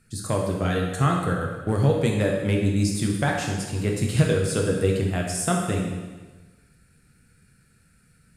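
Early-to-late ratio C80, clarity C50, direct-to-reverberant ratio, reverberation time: 4.5 dB, 2.5 dB, -0.5 dB, 1.3 s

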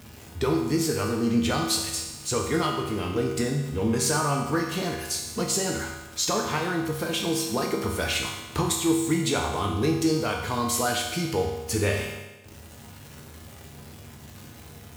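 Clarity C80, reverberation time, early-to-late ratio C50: 5.5 dB, 1.1 s, 3.5 dB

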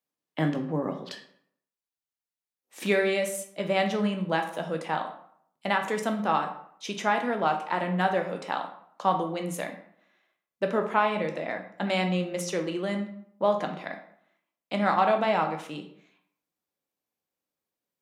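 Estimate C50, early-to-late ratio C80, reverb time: 9.0 dB, 12.5 dB, 0.65 s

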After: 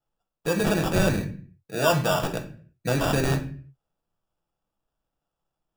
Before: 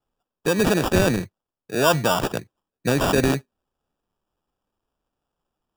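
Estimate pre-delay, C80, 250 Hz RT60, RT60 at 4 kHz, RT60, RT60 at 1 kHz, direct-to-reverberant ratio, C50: 6 ms, 16.0 dB, no reading, 0.35 s, 0.45 s, 0.40 s, 3.5 dB, 11.5 dB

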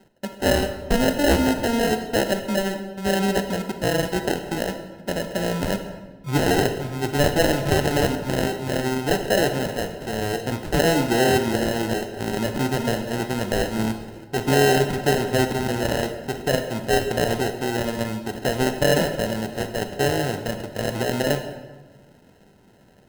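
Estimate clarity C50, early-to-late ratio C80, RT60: 8.0 dB, 10.0 dB, 1.3 s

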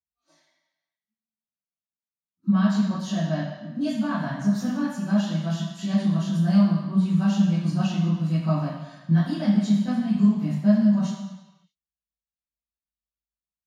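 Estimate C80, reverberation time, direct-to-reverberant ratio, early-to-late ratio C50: 4.0 dB, 1.1 s, -14.0 dB, 0.5 dB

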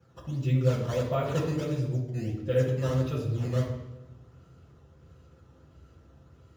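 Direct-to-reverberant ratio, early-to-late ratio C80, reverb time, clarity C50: -9.0 dB, 7.0 dB, 1.1 s, 4.5 dB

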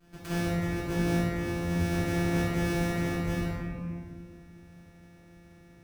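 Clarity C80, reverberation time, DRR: -1.0 dB, 2.0 s, -15.0 dB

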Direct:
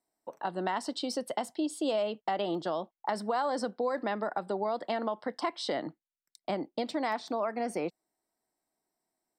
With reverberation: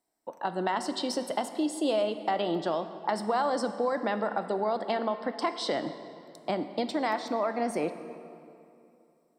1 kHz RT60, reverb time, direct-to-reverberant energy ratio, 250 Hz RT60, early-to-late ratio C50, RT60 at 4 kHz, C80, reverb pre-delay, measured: 2.7 s, 2.7 s, 9.5 dB, 3.0 s, 10.5 dB, 1.8 s, 11.5 dB, 10 ms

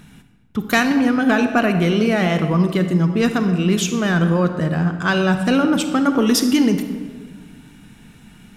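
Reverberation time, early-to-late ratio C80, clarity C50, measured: 1.7 s, 10.0 dB, 8.5 dB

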